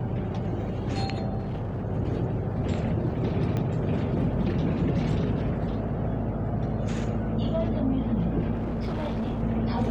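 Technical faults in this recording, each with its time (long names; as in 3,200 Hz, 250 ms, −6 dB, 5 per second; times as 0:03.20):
0:01.38–0:01.84: clipping −27.5 dBFS
0:03.57: click −18 dBFS
0:08.54–0:09.43: clipping −26 dBFS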